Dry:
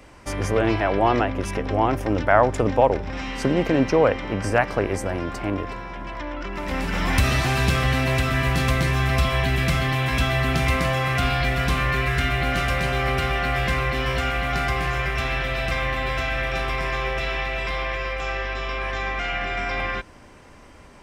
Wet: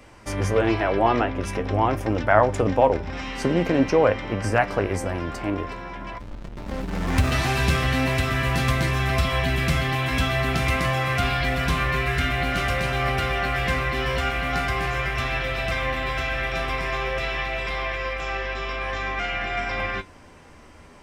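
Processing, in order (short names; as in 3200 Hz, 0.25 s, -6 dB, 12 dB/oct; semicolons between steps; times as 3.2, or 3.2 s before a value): 1.01–1.47 high shelf 11000 Hz -12 dB; 6.18–7.32 backlash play -20 dBFS; flange 0.46 Hz, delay 8.4 ms, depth 4.9 ms, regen +60%; gain +3.5 dB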